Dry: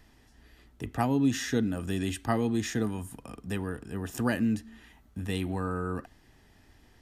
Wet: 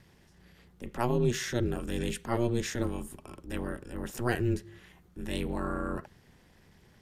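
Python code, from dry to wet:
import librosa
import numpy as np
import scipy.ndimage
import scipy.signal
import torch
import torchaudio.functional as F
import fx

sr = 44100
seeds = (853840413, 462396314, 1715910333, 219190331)

y = fx.transient(x, sr, attack_db=-6, sustain_db=0)
y = y * np.sin(2.0 * np.pi * 120.0 * np.arange(len(y)) / sr)
y = y * 10.0 ** (2.5 / 20.0)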